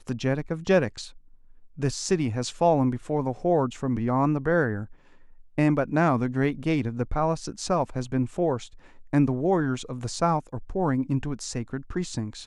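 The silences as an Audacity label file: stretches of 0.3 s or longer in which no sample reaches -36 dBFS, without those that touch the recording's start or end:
1.080000	1.790000	silence
4.850000	5.580000	silence
8.660000	9.130000	silence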